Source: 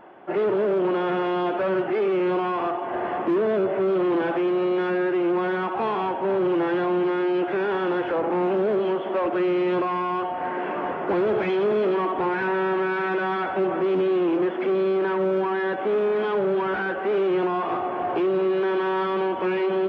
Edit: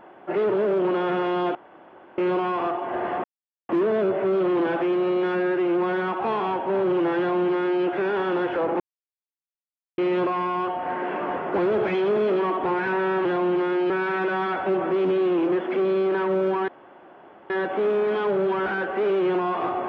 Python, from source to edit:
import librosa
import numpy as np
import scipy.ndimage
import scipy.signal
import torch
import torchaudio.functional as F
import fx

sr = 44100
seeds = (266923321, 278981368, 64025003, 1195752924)

y = fx.edit(x, sr, fx.room_tone_fill(start_s=1.55, length_s=0.63),
    fx.insert_silence(at_s=3.24, length_s=0.45),
    fx.duplicate(start_s=6.73, length_s=0.65, to_s=12.8),
    fx.silence(start_s=8.35, length_s=1.18),
    fx.insert_room_tone(at_s=15.58, length_s=0.82), tone=tone)